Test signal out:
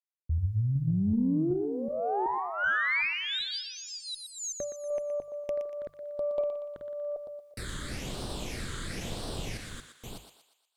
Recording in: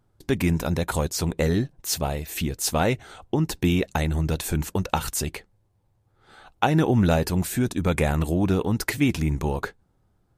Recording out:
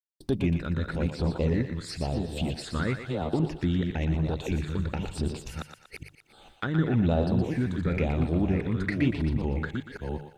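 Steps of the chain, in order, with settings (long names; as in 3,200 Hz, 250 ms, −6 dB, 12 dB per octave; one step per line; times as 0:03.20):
delay that plays each chunk backwards 377 ms, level −5.5 dB
treble cut that deepens with the level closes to 2,900 Hz, closed at −22 dBFS
mains-hum notches 50/100/150 Hz
downward expander −47 dBFS
in parallel at +1 dB: downward compressor 6 to 1, threshold −33 dBFS
on the sum: all-pass phaser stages 8, 1 Hz, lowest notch 720–2,200 Hz
bit-depth reduction 12 bits, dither none
harmonic generator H 8 −35 dB, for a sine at −5 dBFS
on a send: feedback echo with a high-pass in the loop 119 ms, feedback 49%, high-pass 550 Hz, level −7 dB
on the sum: level −6 dB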